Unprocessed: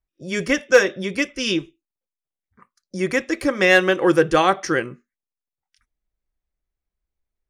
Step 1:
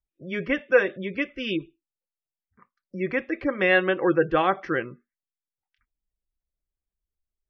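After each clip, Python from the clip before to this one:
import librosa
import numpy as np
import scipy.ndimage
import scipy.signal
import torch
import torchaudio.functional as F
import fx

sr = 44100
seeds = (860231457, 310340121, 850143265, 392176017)

y = fx.spec_gate(x, sr, threshold_db=-30, keep='strong')
y = scipy.signal.sosfilt(scipy.signal.butter(4, 3100.0, 'lowpass', fs=sr, output='sos'), y)
y = y * 10.0 ** (-5.0 / 20.0)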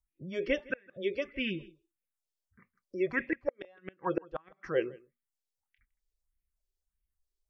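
y = fx.phaser_stages(x, sr, stages=4, low_hz=160.0, high_hz=1000.0, hz=1.6, feedback_pct=50)
y = fx.gate_flip(y, sr, shuts_db=-17.0, range_db=-35)
y = y + 10.0 ** (-23.0 / 20.0) * np.pad(y, (int(161 * sr / 1000.0), 0))[:len(y)]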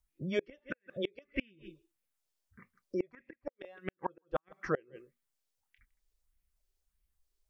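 y = fx.gate_flip(x, sr, shuts_db=-25.0, range_db=-33)
y = y * 10.0 ** (5.0 / 20.0)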